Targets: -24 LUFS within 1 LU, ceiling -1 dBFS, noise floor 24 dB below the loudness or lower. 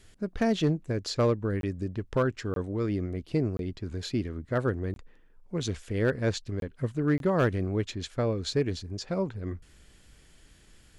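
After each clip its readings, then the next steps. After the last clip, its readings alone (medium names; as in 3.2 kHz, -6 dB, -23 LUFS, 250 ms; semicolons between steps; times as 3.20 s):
clipped samples 0.3%; clipping level -17.5 dBFS; dropouts 6; longest dropout 22 ms; loudness -30.0 LUFS; peak level -17.5 dBFS; loudness target -24.0 LUFS
-> clip repair -17.5 dBFS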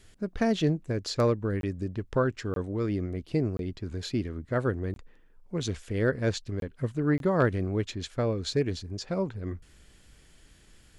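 clipped samples 0.0%; dropouts 6; longest dropout 22 ms
-> interpolate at 1.61/2.54/3.57/4.94/6.60/7.18 s, 22 ms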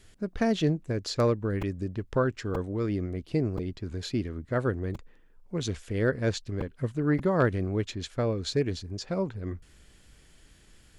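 dropouts 0; loudness -30.0 LUFS; peak level -12.0 dBFS; loudness target -24.0 LUFS
-> trim +6 dB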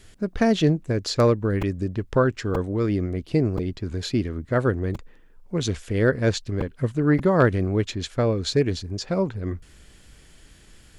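loudness -24.0 LUFS; peak level -6.0 dBFS; noise floor -52 dBFS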